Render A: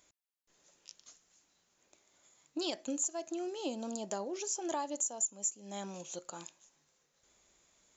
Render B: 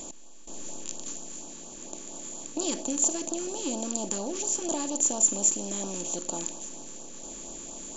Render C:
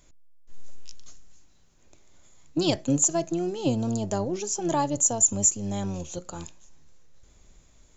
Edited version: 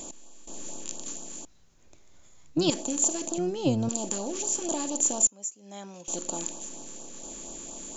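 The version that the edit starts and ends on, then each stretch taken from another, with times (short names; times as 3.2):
B
1.45–2.7 from C
3.38–3.89 from C
5.27–6.08 from A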